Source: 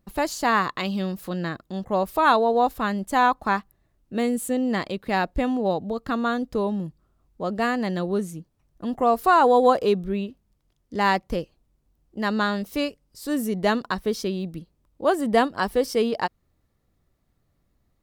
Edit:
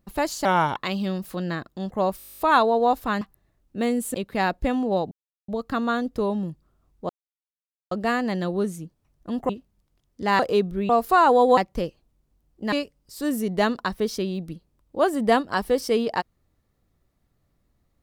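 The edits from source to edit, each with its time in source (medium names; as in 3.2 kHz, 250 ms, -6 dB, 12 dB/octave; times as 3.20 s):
0.45–0.70 s: speed 80%
2.12 s: stutter 0.02 s, 11 plays
2.95–3.58 s: delete
4.51–4.88 s: delete
5.85 s: insert silence 0.37 s
7.46 s: insert silence 0.82 s
9.04–9.72 s: swap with 10.22–11.12 s
12.27–12.78 s: delete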